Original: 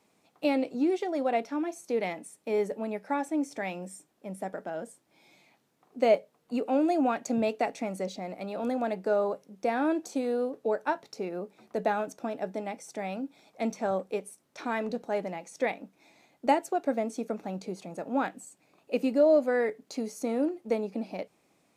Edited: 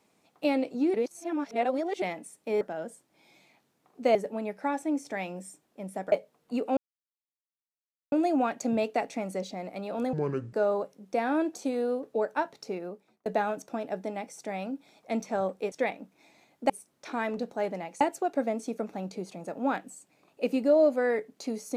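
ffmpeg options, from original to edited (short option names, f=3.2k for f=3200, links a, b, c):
-filter_complex "[0:a]asplit=13[a][b][c][d][e][f][g][h][i][j][k][l][m];[a]atrim=end=0.942[n];[b]atrim=start=0.938:end=2.022,asetpts=PTS-STARTPTS,areverse[o];[c]atrim=start=2.018:end=2.612[p];[d]atrim=start=4.578:end=6.122[q];[e]atrim=start=2.608:end=4.582[r];[f]atrim=start=6.118:end=6.77,asetpts=PTS-STARTPTS,afade=t=out:st=0.648:d=0.004:c=hsin,apad=pad_dur=1.35[s];[g]atrim=start=6.77:end=8.784,asetpts=PTS-STARTPTS,afade=t=in:d=0.004:c=hsin[t];[h]atrim=start=8.78:end=9.03,asetpts=PTS-STARTPTS,asetrate=27783,aresample=44100[u];[i]atrim=start=9.026:end=11.76,asetpts=PTS-STARTPTS,afade=t=out:st=2.204:d=0.53[v];[j]atrim=start=11.76:end=14.222,asetpts=PTS-STARTPTS,afade=t=in:d=0.004:c=hsin[w];[k]atrim=start=15.528:end=16.512[x];[l]atrim=start=14.218:end=15.532[y];[m]atrim=start=16.508[z];[n][o]acrossfade=d=0.004:c1=hsin:c2=hsin[aa];[aa][p]acrossfade=d=0.004:c1=hsin:c2=hsin[ab];[ab][q]acrossfade=d=0.004:c1=hsin:c2=hsin[ac];[ac][r]acrossfade=d=0.004:c1=hsin:c2=hsin[ad];[s][t]concat=n=2:v=0:a=1[ae];[ad][ae]acrossfade=d=0.004:c1=hsin:c2=hsin[af];[af][u]acrossfade=d=0.004:c1=hsin:c2=hsin[ag];[v][w]concat=n=2:v=0:a=1[ah];[ag][ah]acrossfade=d=0.004:c1=hsin:c2=hsin[ai];[ai][x]acrossfade=d=0.004:c1=hsin:c2=hsin[aj];[aj][y]acrossfade=d=0.004:c1=hsin:c2=hsin[ak];[ak][z]acrossfade=d=0.004:c1=hsin:c2=hsin"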